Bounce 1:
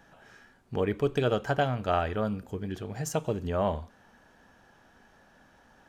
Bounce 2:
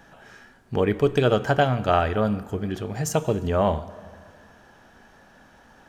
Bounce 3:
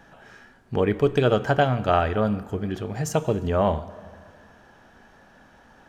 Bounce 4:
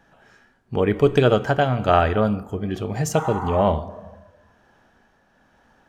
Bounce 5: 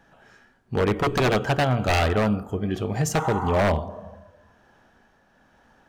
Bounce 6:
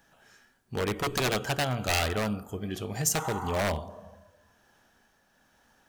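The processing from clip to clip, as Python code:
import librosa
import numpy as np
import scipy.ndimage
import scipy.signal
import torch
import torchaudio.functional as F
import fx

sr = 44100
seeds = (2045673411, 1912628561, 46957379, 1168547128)

y1 = fx.rev_plate(x, sr, seeds[0], rt60_s=2.2, hf_ratio=0.65, predelay_ms=0, drr_db=16.0)
y1 = y1 * 10.0 ** (6.5 / 20.0)
y2 = fx.high_shelf(y1, sr, hz=5200.0, db=-5.0)
y3 = fx.spec_repair(y2, sr, seeds[1], start_s=3.2, length_s=0.38, low_hz=740.0, high_hz=2200.0, source='both')
y3 = fx.noise_reduce_blind(y3, sr, reduce_db=9)
y3 = fx.tremolo_shape(y3, sr, shape='triangle', hz=1.1, depth_pct=40)
y3 = y3 * 10.0 ** (4.5 / 20.0)
y4 = 10.0 ** (-14.5 / 20.0) * (np.abs((y3 / 10.0 ** (-14.5 / 20.0) + 3.0) % 4.0 - 2.0) - 1.0)
y5 = librosa.effects.preemphasis(y4, coef=0.8, zi=[0.0])
y5 = y5 * 10.0 ** (5.5 / 20.0)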